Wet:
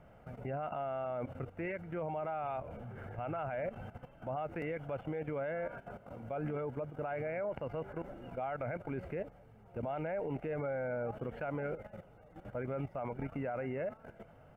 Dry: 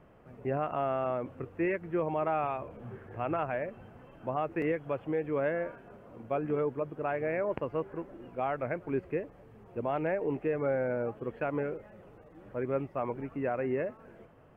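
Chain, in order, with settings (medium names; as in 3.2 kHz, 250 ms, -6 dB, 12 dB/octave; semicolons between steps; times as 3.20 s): level held to a coarse grid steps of 13 dB; comb 1.4 ms, depth 49%; peak limiter -35.5 dBFS, peak gain reduction 10.5 dB; trim +5.5 dB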